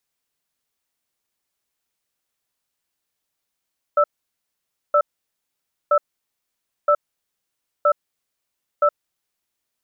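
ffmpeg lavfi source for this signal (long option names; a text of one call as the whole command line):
ffmpeg -f lavfi -i "aevalsrc='0.178*(sin(2*PI*588*t)+sin(2*PI*1320*t))*clip(min(mod(t,0.97),0.07-mod(t,0.97))/0.005,0,1)':duration=4.98:sample_rate=44100" out.wav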